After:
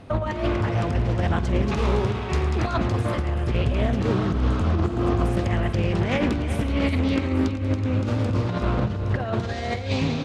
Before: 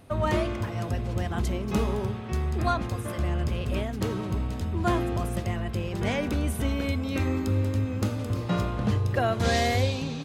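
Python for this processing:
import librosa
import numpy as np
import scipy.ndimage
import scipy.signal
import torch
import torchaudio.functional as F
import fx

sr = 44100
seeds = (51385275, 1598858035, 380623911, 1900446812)

y = fx.tilt_shelf(x, sr, db=-3.5, hz=970.0, at=(1.62, 2.78))
y = fx.spec_repair(y, sr, seeds[0], start_s=4.21, length_s=0.97, low_hz=500.0, high_hz=6400.0, source='both')
y = fx.over_compress(y, sr, threshold_db=-28.0, ratio=-0.5)
y = fx.air_absorb(y, sr, metres=84.0)
y = fx.echo_multitap(y, sr, ms=(48, 111, 375, 850), db=(-17.5, -14.5, -11.0, -16.5))
y = fx.doppler_dist(y, sr, depth_ms=0.34)
y = F.gain(torch.from_numpy(y), 6.0).numpy()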